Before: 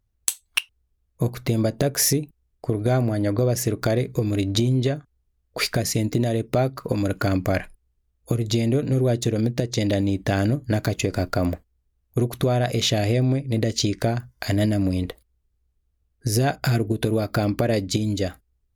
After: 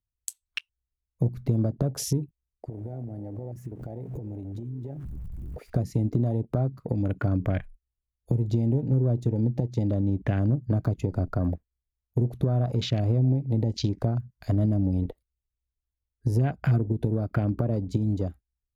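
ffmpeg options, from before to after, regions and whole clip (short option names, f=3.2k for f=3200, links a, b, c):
-filter_complex "[0:a]asettb=1/sr,asplit=3[a][b][c];[a]atrim=end=2.684[d];[b]atrim=start=2.68:end=5.7,asetpts=PTS-STARTPTS,afade=t=in:d=0.004:c=qsin,afade=t=out:st=3.016:d=0.004:c=qsin,aeval=exprs='val(0)+0.5*0.0355*sgn(val(0))':c=same,equalizer=f=4.3k:w=1:g=-9.5,acompressor=threshold=-31dB:ratio=20:attack=3.2:release=140:knee=1:detection=peak[e];[c]atrim=start=5.696[f];[d][e]acrossfade=d=0.004:c1=hsin:c2=qsin[g];[g][f]acrossfade=d=0.004:c1=qsin:c2=hsin,afwtdn=0.0316,bass=f=250:g=3,treble=f=4k:g=-2,acrossover=split=230[h][i];[i]acompressor=threshold=-29dB:ratio=3[j];[h][j]amix=inputs=2:normalize=0,volume=-3dB"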